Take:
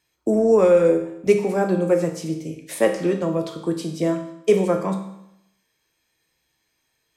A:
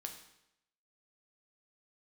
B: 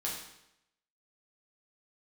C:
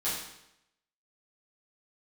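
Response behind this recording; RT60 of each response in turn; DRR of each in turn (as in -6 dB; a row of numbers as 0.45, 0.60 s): A; 0.85, 0.85, 0.85 s; 3.5, -5.0, -12.0 dB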